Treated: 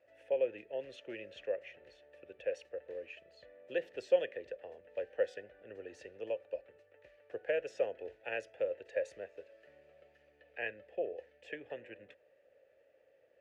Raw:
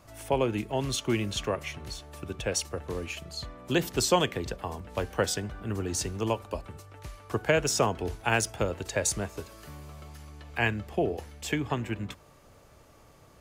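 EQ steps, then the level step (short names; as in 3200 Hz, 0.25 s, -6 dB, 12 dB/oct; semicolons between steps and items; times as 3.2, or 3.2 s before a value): vowel filter e; bell 180 Hz -7.5 dB 1.9 oct; high shelf 3300 Hz -10.5 dB; +2.0 dB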